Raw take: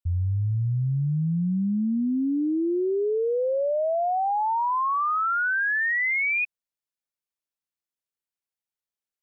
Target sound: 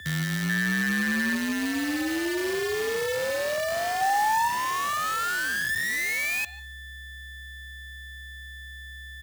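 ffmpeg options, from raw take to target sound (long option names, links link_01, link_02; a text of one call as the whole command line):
ffmpeg -i in.wav -filter_complex "[0:a]aeval=exprs='val(0)+0.0316*sin(2*PI*1700*n/s)':channel_layout=same,aecho=1:1:148:0.126,asettb=1/sr,asplit=3[link_01][link_02][link_03];[link_01]atrim=end=4.014[link_04];[link_02]atrim=start=4.01:end=4.48,asetpts=PTS-STARTPTS,afade=type=in:duration=0.004:curve=qsin,afade=type=out:start_time=0.466:duration=0.004:curve=qsin,acontrast=46[link_05];[link_03]atrim=start=4.476[link_06];[link_04][link_05]acrossfade=duration=0.004:curve1=hsin:curve2=qsin[link_07];[link_07][link_06]acrossfade=duration=0.004:curve1=qsin:curve2=hsin,asettb=1/sr,asplit=3[link_08][link_09][link_10];[link_08]atrim=end=5.414[link_11];[link_09]atrim=start=5.41:end=5.96,asetpts=PTS-STARTPTS,afade=type=in:duration=0.004:curve=qsin,afade=type=out:start_time=0.546:duration=0.004:curve=qsin,highpass=frequency=450:poles=1[link_12];[link_10]atrim=start=5.956[link_13];[link_11][link_12]acrossfade=duration=0.004:curve1=hsin:curve2=qsin[link_14];[link_14][link_13]acrossfade=duration=0.004:curve1=qsin:curve2=hsin,aecho=1:1:67|134|201:0.0708|0.0354|0.0177,acrusher=bits=5:dc=4:mix=0:aa=0.000001,asettb=1/sr,asplit=3[link_15][link_16][link_17];[link_15]atrim=end=0.494[link_18];[link_16]atrim=start=0.49:end=1.35,asetpts=PTS-STARTPTS,afade=type=in:duration=0.004:curve=qsin,afade=type=out:start_time=0.856:duration=0.004:curve=qsin,equalizer=frequency=1600:width_type=o:width=0.26:gain=11[link_19];[link_17]atrim=start=1.346[link_20];[link_18][link_19]acrossfade=duration=0.004:curve1=hsin:curve2=qsin[link_21];[link_21][link_20]acrossfade=duration=0.004:curve1=qsin:curve2=hsin,afreqshift=68,volume=-5dB" out.wav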